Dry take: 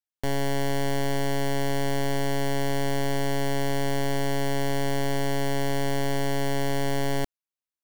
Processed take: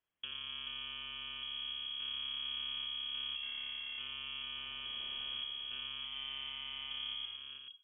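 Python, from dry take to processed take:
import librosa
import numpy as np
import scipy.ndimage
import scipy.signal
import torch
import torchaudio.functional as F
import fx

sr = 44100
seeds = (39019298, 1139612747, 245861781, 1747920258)

p1 = fx.octave_divider(x, sr, octaves=2, level_db=2.0)
p2 = fx.peak_eq(p1, sr, hz=560.0, db=15.0, octaves=0.37, at=(3.35, 3.99))
p3 = fx.highpass(p2, sr, hz=330.0, slope=6, at=(6.04, 6.91))
p4 = fx.over_compress(p3, sr, threshold_db=-29.0, ratio=-0.5)
p5 = fx.tremolo_random(p4, sr, seeds[0], hz=3.5, depth_pct=90)
p6 = fx.dmg_noise_colour(p5, sr, seeds[1], colour='blue', level_db=-50.0, at=(4.56, 5.37), fade=0.02)
p7 = fx.tube_stage(p6, sr, drive_db=49.0, bias=0.7)
p8 = p7 + fx.echo_multitap(p7, sr, ms=(80, 116, 256, 435), db=(-11.0, -14.5, -12.5, -5.5), dry=0)
p9 = fx.rev_schroeder(p8, sr, rt60_s=0.42, comb_ms=31, drr_db=14.0)
p10 = fx.freq_invert(p9, sr, carrier_hz=3300)
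y = p10 * 10.0 ** (8.0 / 20.0)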